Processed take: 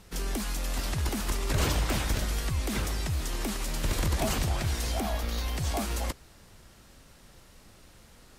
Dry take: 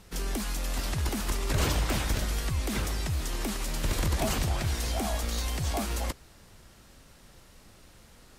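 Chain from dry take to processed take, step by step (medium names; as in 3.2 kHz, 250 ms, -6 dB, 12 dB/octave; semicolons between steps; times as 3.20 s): 5.00–5.57 s: peaking EQ 8.1 kHz -9 dB 0.91 oct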